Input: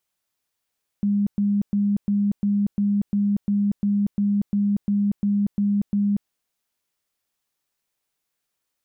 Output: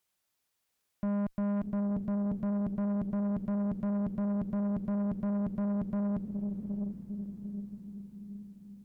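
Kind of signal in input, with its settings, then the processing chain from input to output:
tone bursts 203 Hz, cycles 48, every 0.35 s, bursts 15, -17.5 dBFS
on a send: diffused feedback echo 0.628 s, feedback 54%, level -8 dB; on the sum: tube stage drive 29 dB, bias 0.3

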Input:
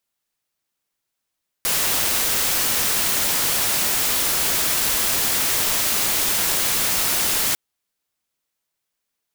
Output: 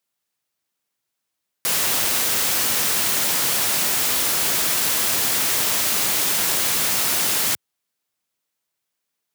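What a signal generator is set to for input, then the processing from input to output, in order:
noise white, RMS -20.5 dBFS 5.90 s
HPF 88 Hz 24 dB/oct

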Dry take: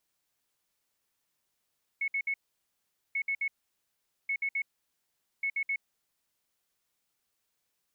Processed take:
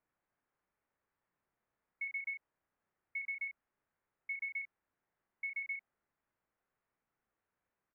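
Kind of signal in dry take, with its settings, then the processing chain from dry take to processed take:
beep pattern sine 2200 Hz, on 0.07 s, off 0.06 s, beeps 3, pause 0.81 s, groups 4, -27.5 dBFS
LPF 1900 Hz 24 dB/oct; doubler 33 ms -8 dB

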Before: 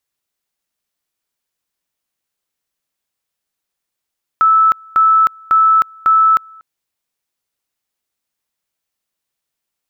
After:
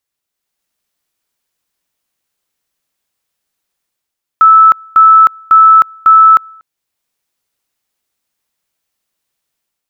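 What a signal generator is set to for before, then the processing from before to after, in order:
two-level tone 1310 Hz -7 dBFS, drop 29 dB, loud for 0.31 s, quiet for 0.24 s, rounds 4
dynamic EQ 950 Hz, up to +7 dB, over -26 dBFS, Q 0.74; AGC gain up to 6 dB

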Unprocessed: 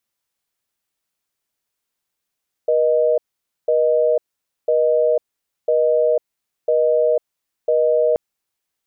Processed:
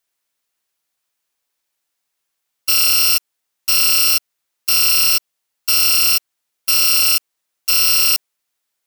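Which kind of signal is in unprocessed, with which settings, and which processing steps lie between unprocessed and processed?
call progress tone busy tone, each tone -16 dBFS 5.48 s
FFT order left unsorted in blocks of 256 samples; low shelf 340 Hz -8.5 dB; in parallel at -4.5 dB: soft clip -17.5 dBFS

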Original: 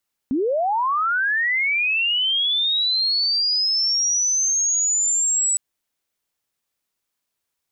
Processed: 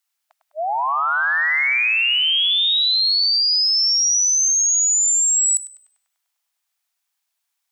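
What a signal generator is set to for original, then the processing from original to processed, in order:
chirp linear 240 Hz -> 7900 Hz -18 dBFS -> -17 dBFS 5.26 s
brick-wall FIR high-pass 630 Hz; tilt shelf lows -3 dB, about 1300 Hz; on a send: tape echo 0.1 s, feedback 82%, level -6.5 dB, low-pass 3000 Hz

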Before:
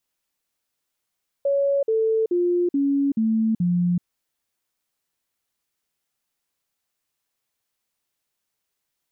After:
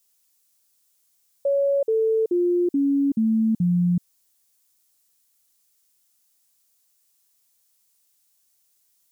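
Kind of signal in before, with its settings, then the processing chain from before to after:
stepped sine 559 Hz down, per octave 3, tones 6, 0.38 s, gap 0.05 s -17.5 dBFS
tone controls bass +1 dB, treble +15 dB

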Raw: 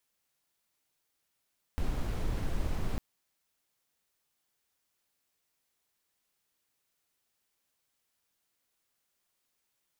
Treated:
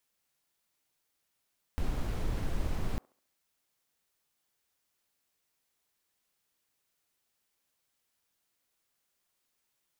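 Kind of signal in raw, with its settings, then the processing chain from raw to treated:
noise brown, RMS -30.5 dBFS 1.20 s
band-limited delay 69 ms, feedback 39%, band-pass 740 Hz, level -21 dB

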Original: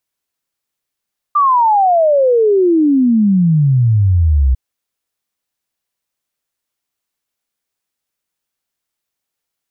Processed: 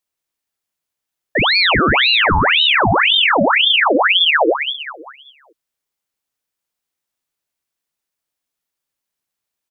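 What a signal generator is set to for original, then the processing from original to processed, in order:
log sweep 1200 Hz -> 62 Hz 3.20 s -8 dBFS
on a send: feedback echo 0.196 s, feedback 43%, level -8 dB; on the sum: ring modulator with a swept carrier 1900 Hz, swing 80%, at 1.9 Hz

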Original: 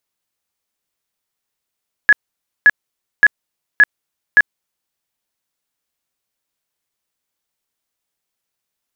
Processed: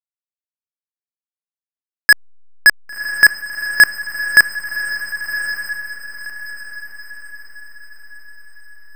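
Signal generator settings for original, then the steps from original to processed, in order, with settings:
tone bursts 1690 Hz, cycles 62, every 0.57 s, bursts 5, -4 dBFS
sample leveller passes 5; backlash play -32.5 dBFS; on a send: diffused feedback echo 1.088 s, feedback 42%, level -8.5 dB

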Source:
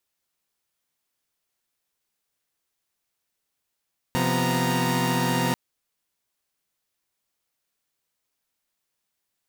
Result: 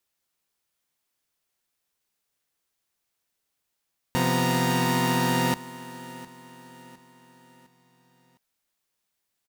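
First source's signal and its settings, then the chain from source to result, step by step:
chord C3/F3/B3/A#5 saw, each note -24.5 dBFS 1.39 s
feedback echo 0.708 s, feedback 43%, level -17.5 dB

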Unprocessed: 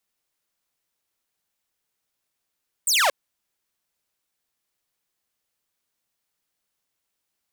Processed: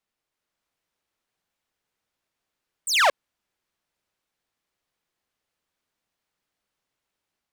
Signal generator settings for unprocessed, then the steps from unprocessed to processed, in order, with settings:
laser zap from 9100 Hz, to 510 Hz, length 0.23 s saw, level -14 dB
AGC gain up to 3 dB; LPF 2900 Hz 6 dB/oct

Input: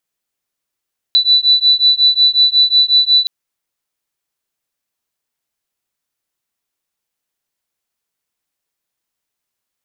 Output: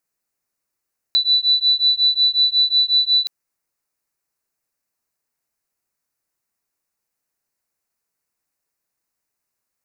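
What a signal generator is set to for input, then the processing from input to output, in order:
beating tones 3970 Hz, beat 5.5 Hz, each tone -11.5 dBFS 2.12 s
bell 3300 Hz -13.5 dB 0.41 oct

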